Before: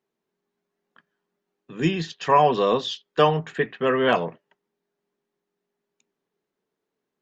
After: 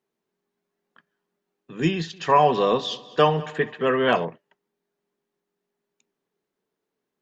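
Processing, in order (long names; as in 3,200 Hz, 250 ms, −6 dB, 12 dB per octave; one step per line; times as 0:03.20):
0:01.93–0:04.25: echo machine with several playback heads 67 ms, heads first and third, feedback 52%, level −21 dB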